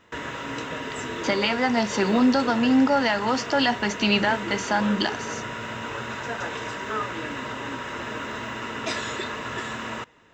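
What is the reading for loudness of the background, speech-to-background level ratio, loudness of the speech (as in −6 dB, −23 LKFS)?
−31.5 LKFS, 9.0 dB, −22.5 LKFS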